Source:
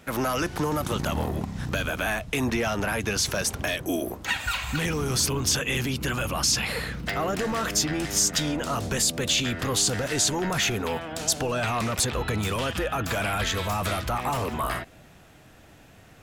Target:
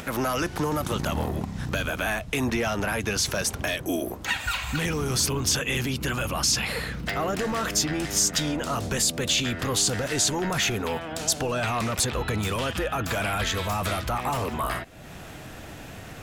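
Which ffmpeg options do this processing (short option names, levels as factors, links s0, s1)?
-af "acompressor=mode=upward:threshold=0.0355:ratio=2.5"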